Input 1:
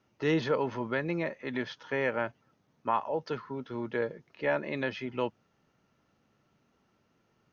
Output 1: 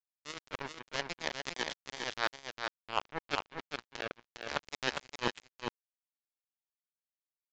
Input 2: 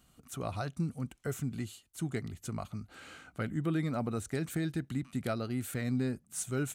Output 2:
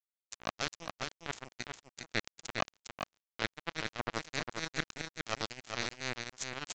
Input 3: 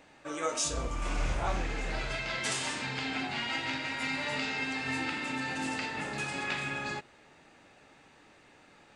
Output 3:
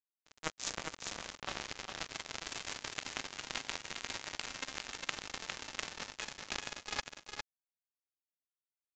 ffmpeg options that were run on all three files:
-filter_complex "[0:a]highpass=f=730:p=1,areverse,acompressor=threshold=0.00708:ratio=20,areverse,acrusher=bits=5:mix=0:aa=0.5,asplit=2[s0][s1];[s1]aecho=0:1:406:0.562[s2];[s0][s2]amix=inputs=2:normalize=0,aresample=16000,aresample=44100,volume=6.68"

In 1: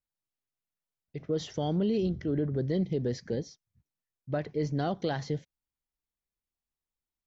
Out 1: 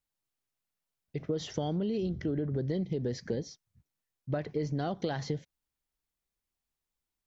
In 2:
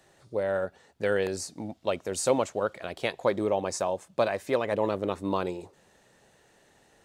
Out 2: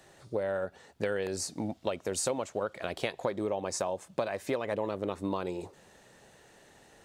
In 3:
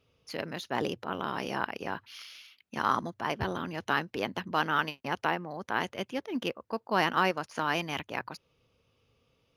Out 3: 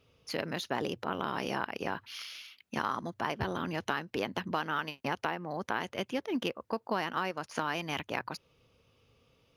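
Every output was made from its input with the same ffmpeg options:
-af "acompressor=threshold=0.0251:ratio=6,volume=1.5"

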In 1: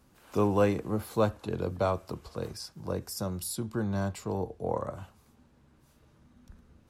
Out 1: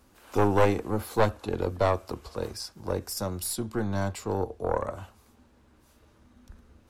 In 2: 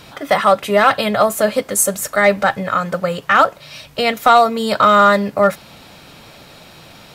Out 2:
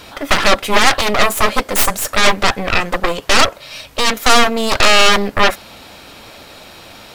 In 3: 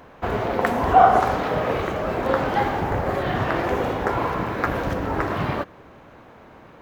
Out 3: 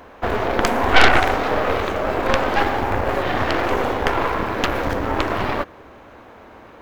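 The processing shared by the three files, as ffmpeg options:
-af "aeval=exprs='0.891*(cos(1*acos(clip(val(0)/0.891,-1,1)))-cos(1*PI/2))+0.178*(cos(3*acos(clip(val(0)/0.891,-1,1)))-cos(3*PI/2))+0.282*(cos(6*acos(clip(val(0)/0.891,-1,1)))-cos(6*PI/2))+0.224*(cos(7*acos(clip(val(0)/0.891,-1,1)))-cos(7*PI/2))':c=same,equalizer=f=150:t=o:w=0.58:g=-11.5,aeval=exprs='1.78*sin(PI/2*1.58*val(0)/1.78)':c=same,volume=0.473"

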